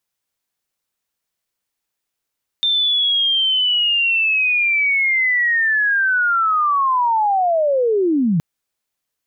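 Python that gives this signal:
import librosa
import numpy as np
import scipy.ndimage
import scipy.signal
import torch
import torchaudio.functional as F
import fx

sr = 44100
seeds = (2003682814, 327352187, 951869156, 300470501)

y = fx.chirp(sr, length_s=5.77, from_hz=3600.0, to_hz=150.0, law='linear', from_db=-14.0, to_db=-13.5)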